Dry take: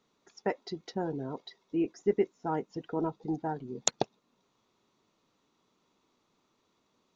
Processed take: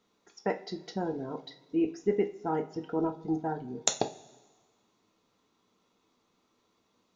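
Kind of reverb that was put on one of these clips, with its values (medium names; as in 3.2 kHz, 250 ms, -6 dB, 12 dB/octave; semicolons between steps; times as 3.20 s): two-slope reverb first 0.3 s, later 1.5 s, from -19 dB, DRR 5 dB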